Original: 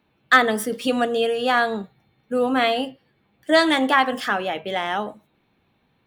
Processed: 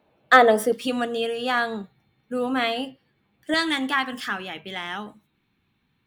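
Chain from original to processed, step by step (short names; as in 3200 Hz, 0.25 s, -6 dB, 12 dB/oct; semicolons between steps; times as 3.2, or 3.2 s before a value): bell 600 Hz +12 dB 1.1 oct, from 0.72 s -4 dB, from 3.54 s -13 dB; gain -2.5 dB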